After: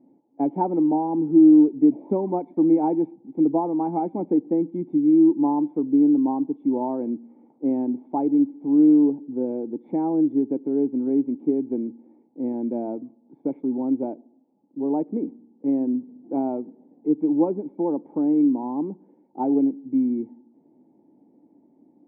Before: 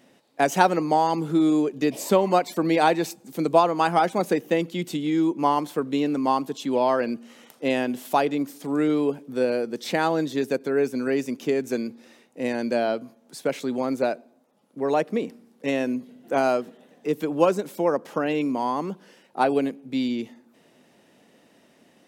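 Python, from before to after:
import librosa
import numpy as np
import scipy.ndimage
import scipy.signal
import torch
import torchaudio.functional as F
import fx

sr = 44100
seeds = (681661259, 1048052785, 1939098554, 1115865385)

y = fx.formant_cascade(x, sr, vowel='u')
y = y * librosa.db_to_amplitude(8.5)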